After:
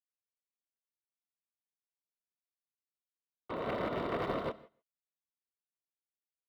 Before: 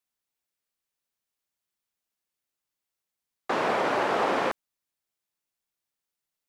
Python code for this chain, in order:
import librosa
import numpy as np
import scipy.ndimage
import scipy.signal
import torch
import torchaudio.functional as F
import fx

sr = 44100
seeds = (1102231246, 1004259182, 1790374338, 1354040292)

y = scipy.ndimage.median_filter(x, 25, mode='constant')
y = fx.highpass(y, sr, hz=78.0, slope=6)
y = fx.peak_eq(y, sr, hz=3700.0, db=10.0, octaves=0.31)
y = (np.mod(10.0 ** (20.5 / 20.0) * y + 1.0, 2.0) - 1.0) / 10.0 ** (20.5 / 20.0)
y = fx.air_absorb(y, sr, metres=500.0)
y = fx.notch_comb(y, sr, f0_hz=830.0)
y = y + 10.0 ** (-21.0 / 20.0) * np.pad(y, (int(139 * sr / 1000.0), 0))[:len(y)]
y = fx.rev_gated(y, sr, seeds[0], gate_ms=180, shape='rising', drr_db=7.5)
y = fx.upward_expand(y, sr, threshold_db=-38.0, expansion=2.5)
y = y * 10.0 ** (-2.0 / 20.0)